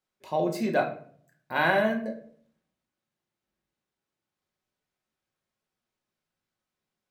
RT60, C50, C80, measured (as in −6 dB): 0.55 s, 10.0 dB, 13.5 dB